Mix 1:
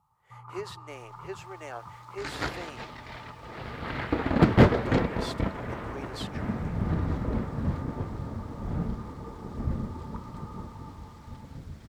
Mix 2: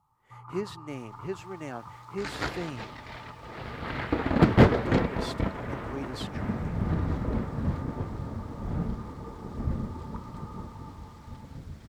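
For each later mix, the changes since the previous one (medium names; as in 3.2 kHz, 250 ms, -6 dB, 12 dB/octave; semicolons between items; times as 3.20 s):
speech: remove high-pass 420 Hz 24 dB/octave; reverb: off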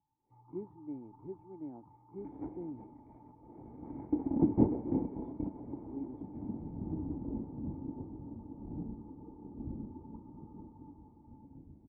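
master: add cascade formant filter u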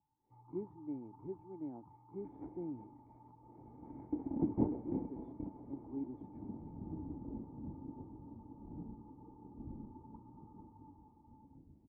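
second sound -6.5 dB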